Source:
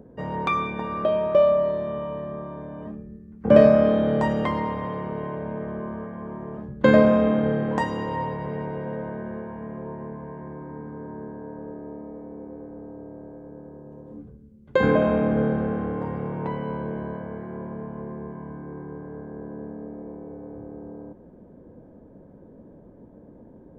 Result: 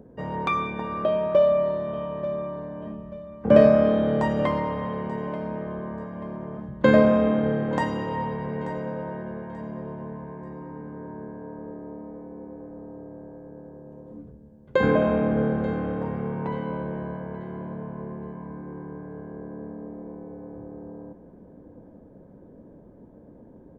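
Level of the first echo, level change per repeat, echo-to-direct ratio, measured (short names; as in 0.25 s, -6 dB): -15.5 dB, -9.0 dB, -15.0 dB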